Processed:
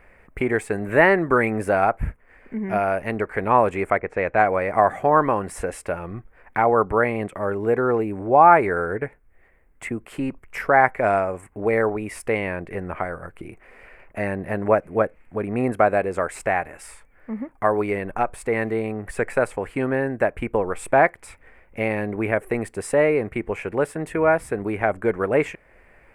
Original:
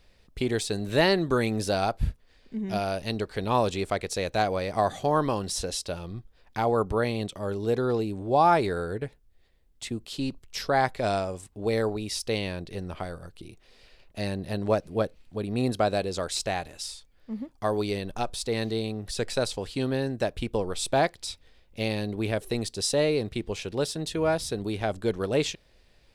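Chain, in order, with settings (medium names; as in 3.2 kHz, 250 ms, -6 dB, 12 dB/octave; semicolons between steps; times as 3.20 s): 3.99–4.53 s: level-controlled noise filter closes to 850 Hz, open at -21 dBFS; FFT filter 120 Hz 0 dB, 1.5 kHz +11 dB, 2.2 kHz +11 dB, 3.8 kHz -22 dB, 5.8 kHz -17 dB, 8.3 kHz -4 dB; in parallel at -0.5 dB: compression, threshold -37 dBFS, peak gain reduction 26.5 dB; on the sum: trim -1 dB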